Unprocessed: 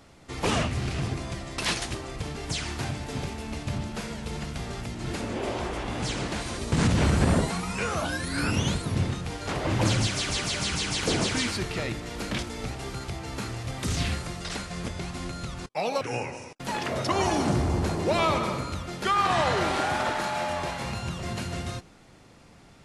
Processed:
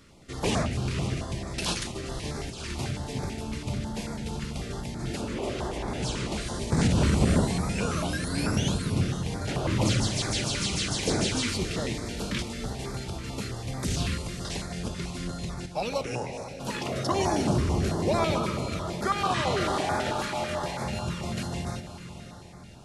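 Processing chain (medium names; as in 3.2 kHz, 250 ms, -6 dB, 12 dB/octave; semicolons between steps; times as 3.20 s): 1.83–2.71 s: compressor with a negative ratio -34 dBFS, ratio -0.5; echo that smears into a reverb 546 ms, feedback 48%, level -11 dB; on a send at -13.5 dB: reverberation RT60 1.4 s, pre-delay 5 ms; on the sum: step-sequenced notch 9.1 Hz 750–2900 Hz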